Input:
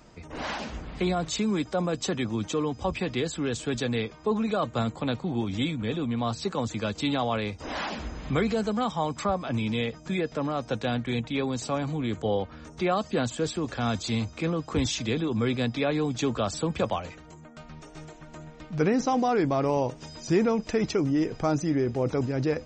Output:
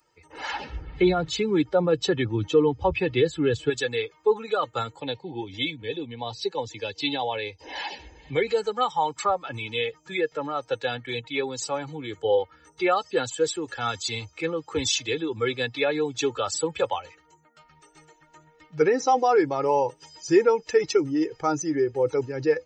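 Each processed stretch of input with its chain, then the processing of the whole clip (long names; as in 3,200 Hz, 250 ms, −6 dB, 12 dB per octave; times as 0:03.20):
0:00.53–0:03.70: low-pass filter 4,700 Hz + low-shelf EQ 290 Hz +11.5 dB
0:05.00–0:08.47: low-pass filter 6,400 Hz 24 dB per octave + parametric band 1,300 Hz −13.5 dB 0.32 octaves
whole clip: spectral dynamics exaggerated over time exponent 1.5; high-pass filter 370 Hz 6 dB per octave; comb filter 2.3 ms, depth 72%; level +6.5 dB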